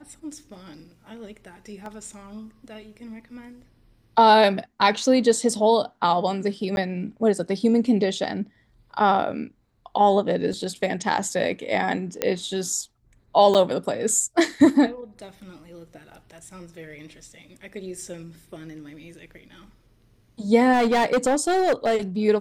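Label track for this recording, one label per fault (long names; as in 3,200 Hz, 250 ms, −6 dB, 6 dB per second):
1.860000	1.860000	drop-out 2 ms
6.760000	6.770000	drop-out
10.530000	10.530000	drop-out 2.2 ms
12.220000	12.220000	click −7 dBFS
13.540000	13.550000	drop-out 7.6 ms
20.720000	21.970000	clipping −16.5 dBFS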